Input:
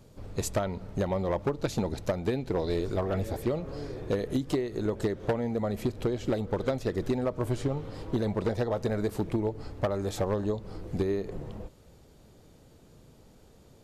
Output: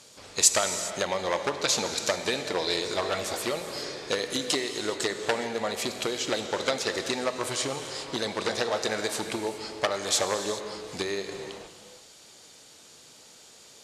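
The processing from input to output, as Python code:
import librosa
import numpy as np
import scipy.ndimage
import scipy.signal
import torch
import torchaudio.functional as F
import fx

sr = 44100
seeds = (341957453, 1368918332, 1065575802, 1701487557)

y = fx.weighting(x, sr, curve='ITU-R 468')
y = fx.rev_gated(y, sr, seeds[0], gate_ms=440, shape='flat', drr_db=7.0)
y = y * 10.0 ** (5.5 / 20.0)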